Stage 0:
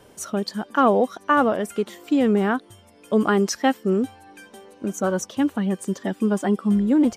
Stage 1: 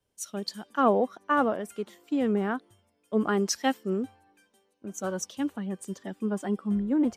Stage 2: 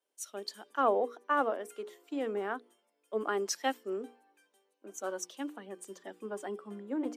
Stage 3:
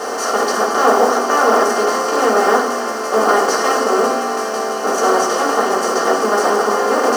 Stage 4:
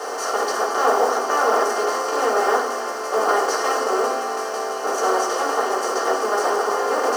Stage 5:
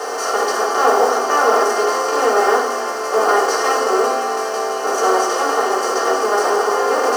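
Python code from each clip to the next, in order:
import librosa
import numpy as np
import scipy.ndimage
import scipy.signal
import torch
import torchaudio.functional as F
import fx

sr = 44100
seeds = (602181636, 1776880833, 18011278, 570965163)

y1 = fx.band_widen(x, sr, depth_pct=70)
y1 = F.gain(torch.from_numpy(y1), -7.5).numpy()
y2 = scipy.signal.sosfilt(scipy.signal.butter(4, 310.0, 'highpass', fs=sr, output='sos'), y1)
y2 = fx.peak_eq(y2, sr, hz=5000.0, db=-2.0, octaves=0.77)
y2 = fx.hum_notches(y2, sr, base_hz=60, count=8)
y2 = F.gain(torch.from_numpy(y2), -4.0).numpy()
y3 = fx.bin_compress(y2, sr, power=0.2)
y3 = fx.mod_noise(y3, sr, seeds[0], snr_db=27)
y3 = fx.rev_fdn(y3, sr, rt60_s=0.65, lf_ratio=1.0, hf_ratio=0.55, size_ms=39.0, drr_db=-6.0)
y3 = F.gain(torch.from_numpy(y3), 3.0).numpy()
y4 = scipy.signal.sosfilt(scipy.signal.butter(4, 310.0, 'highpass', fs=sr, output='sos'), y3)
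y4 = fx.peak_eq(y4, sr, hz=880.0, db=2.0, octaves=0.28)
y4 = F.gain(torch.from_numpy(y4), -5.5).numpy()
y5 = fx.hpss(y4, sr, part='harmonic', gain_db=7)
y5 = F.gain(torch.from_numpy(y5), -1.0).numpy()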